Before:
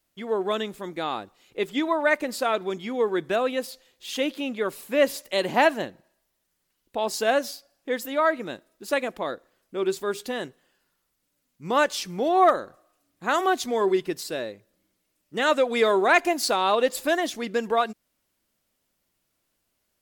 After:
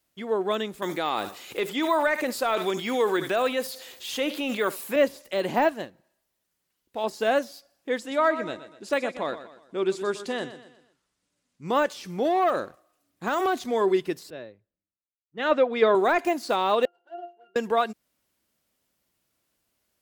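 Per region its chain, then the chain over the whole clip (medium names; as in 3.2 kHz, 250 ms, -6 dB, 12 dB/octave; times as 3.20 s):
0.82–4.96 s: tilt EQ +3.5 dB/octave + delay 71 ms -20.5 dB + level flattener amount 50%
5.67–7.04 s: companding laws mixed up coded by mu + upward expansion, over -41 dBFS
7.98–11.68 s: low-pass 9.3 kHz 24 dB/octave + feedback delay 122 ms, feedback 41%, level -12.5 dB
12.25–13.64 s: compression 3:1, threshold -22 dBFS + waveshaping leveller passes 1
14.30–15.95 s: distance through air 220 m + three bands expanded up and down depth 100%
16.85–17.56 s: median filter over 25 samples + high-pass 480 Hz 24 dB/octave + pitch-class resonator F, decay 0.23 s
whole clip: high-pass 42 Hz; de-esser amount 90%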